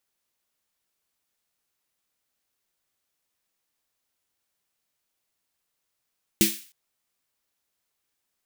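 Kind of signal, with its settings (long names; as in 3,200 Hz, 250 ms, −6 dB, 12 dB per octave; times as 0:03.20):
synth snare length 0.31 s, tones 210 Hz, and 330 Hz, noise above 2,000 Hz, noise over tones −0.5 dB, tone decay 0.23 s, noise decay 0.43 s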